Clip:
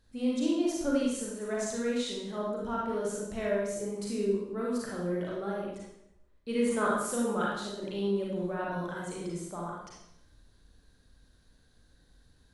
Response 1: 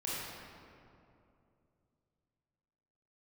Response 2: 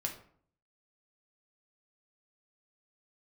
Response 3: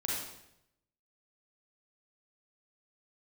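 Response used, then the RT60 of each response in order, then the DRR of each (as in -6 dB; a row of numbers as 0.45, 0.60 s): 3; 2.7, 0.55, 0.80 s; -8.0, 1.5, -5.0 dB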